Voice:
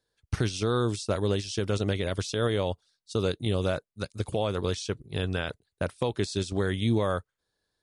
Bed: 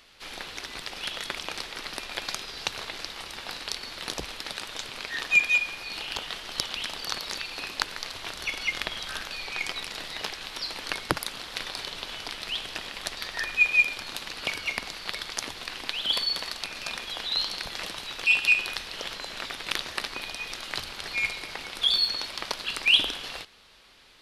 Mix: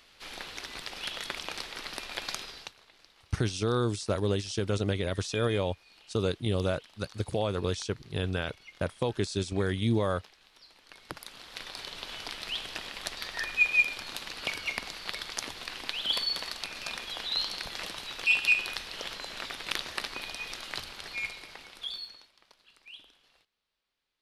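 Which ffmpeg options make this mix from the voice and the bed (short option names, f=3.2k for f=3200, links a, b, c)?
-filter_complex "[0:a]adelay=3000,volume=-1.5dB[a];[1:a]volume=16.5dB,afade=t=out:st=2.42:d=0.32:silence=0.105925,afade=t=in:st=10.89:d=1.32:silence=0.105925,afade=t=out:st=20.49:d=1.82:silence=0.0501187[b];[a][b]amix=inputs=2:normalize=0"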